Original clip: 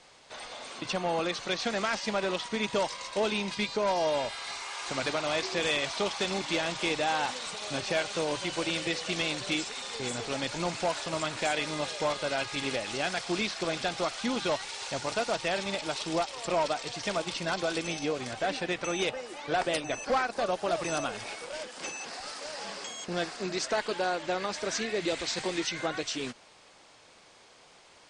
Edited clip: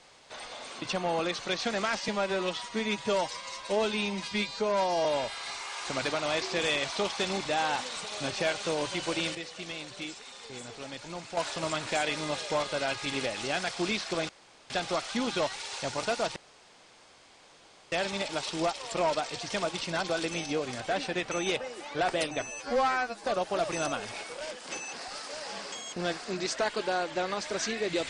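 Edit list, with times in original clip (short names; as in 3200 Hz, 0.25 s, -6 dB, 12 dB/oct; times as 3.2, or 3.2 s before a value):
2.08–4.06 stretch 1.5×
6.46–6.95 cut
8.85–10.87 gain -8.5 dB
13.79 insert room tone 0.41 s
15.45 insert room tone 1.56 s
19.95–20.36 stretch 2×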